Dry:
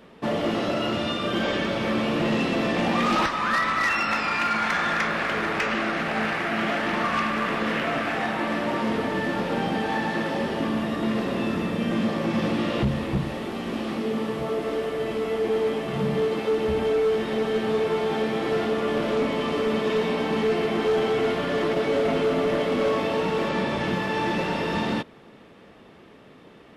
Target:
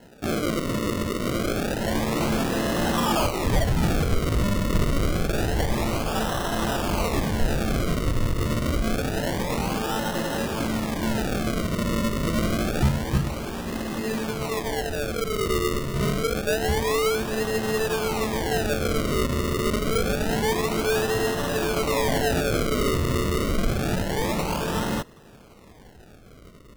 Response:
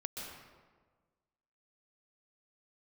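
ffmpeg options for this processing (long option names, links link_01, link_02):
-af "acrusher=samples=37:mix=1:aa=0.000001:lfo=1:lforange=37:lforate=0.27,asubboost=boost=2.5:cutoff=130"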